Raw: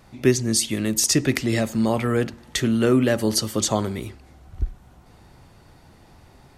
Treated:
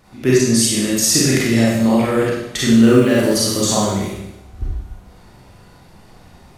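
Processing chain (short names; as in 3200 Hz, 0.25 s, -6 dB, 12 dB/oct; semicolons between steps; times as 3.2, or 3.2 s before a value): 2.65–3.84 block floating point 7-bit; on a send: flutter echo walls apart 8.9 m, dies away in 0.28 s; on the sum: Schroeder reverb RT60 0.87 s, combs from 31 ms, DRR -6 dB; gain -1 dB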